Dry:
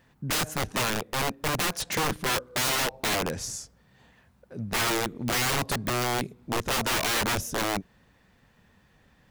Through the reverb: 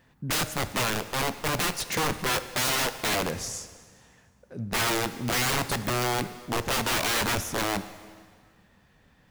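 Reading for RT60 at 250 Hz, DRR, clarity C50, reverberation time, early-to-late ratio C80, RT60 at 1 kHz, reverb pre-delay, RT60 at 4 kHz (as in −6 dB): 1.8 s, 11.5 dB, 13.0 dB, 1.8 s, 14.0 dB, 1.8 s, 5 ms, 1.7 s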